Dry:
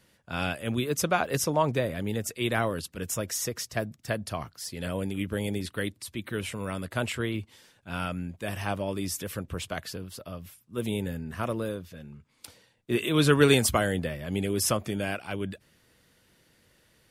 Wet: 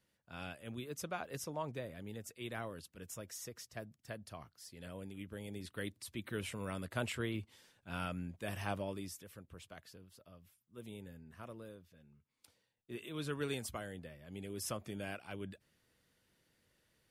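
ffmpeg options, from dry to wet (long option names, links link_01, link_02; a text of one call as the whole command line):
ffmpeg -i in.wav -af "volume=-1dB,afade=type=in:start_time=5.47:duration=0.62:silence=0.398107,afade=type=out:start_time=8.77:duration=0.44:silence=0.281838,afade=type=in:start_time=14.24:duration=0.85:silence=0.446684" out.wav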